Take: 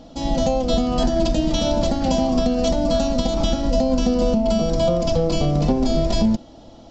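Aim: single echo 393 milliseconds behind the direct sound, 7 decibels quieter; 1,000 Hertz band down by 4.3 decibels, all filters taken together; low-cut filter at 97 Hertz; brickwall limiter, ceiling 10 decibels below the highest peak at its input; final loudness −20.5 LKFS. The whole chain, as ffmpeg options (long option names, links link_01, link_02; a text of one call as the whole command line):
ffmpeg -i in.wav -af "highpass=97,equalizer=frequency=1000:width_type=o:gain=-7.5,alimiter=limit=-19.5dB:level=0:latency=1,aecho=1:1:393:0.447,volume=6.5dB" out.wav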